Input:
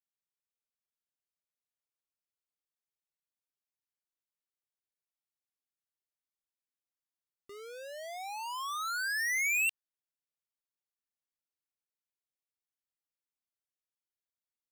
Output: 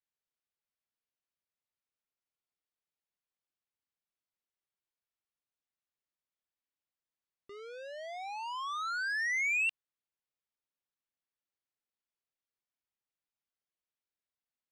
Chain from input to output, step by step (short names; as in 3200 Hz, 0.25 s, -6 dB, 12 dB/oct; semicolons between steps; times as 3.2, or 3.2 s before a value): LPF 4100 Hz 12 dB/oct